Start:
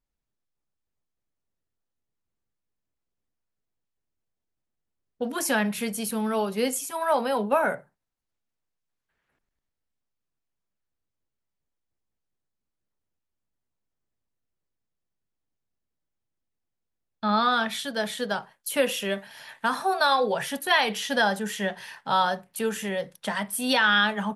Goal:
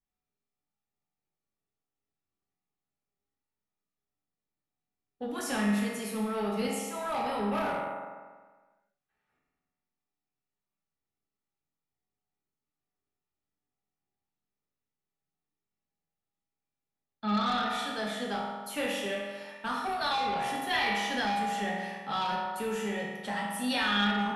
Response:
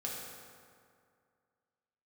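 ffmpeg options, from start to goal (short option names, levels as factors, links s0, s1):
-filter_complex "[1:a]atrim=start_sample=2205,asetrate=70560,aresample=44100[s0];[0:a][s0]afir=irnorm=-1:irlink=0,acrossover=split=240|2000[s1][s2][s3];[s2]asoftclip=type=tanh:threshold=0.0335[s4];[s1][s4][s3]amix=inputs=3:normalize=0,highshelf=f=8200:g=-9"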